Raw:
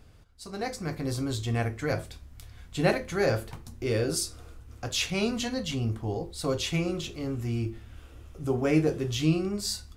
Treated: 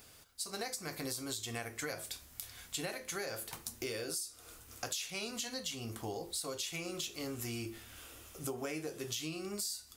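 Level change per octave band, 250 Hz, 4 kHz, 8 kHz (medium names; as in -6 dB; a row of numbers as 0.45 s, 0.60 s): -14.5 dB, -6.0 dB, -2.0 dB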